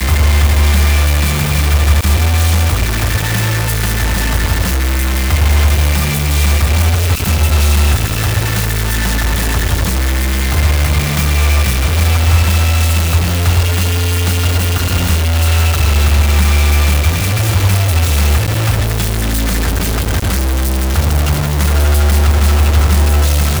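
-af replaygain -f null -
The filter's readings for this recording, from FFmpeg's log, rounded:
track_gain = +1.1 dB
track_peak = 0.596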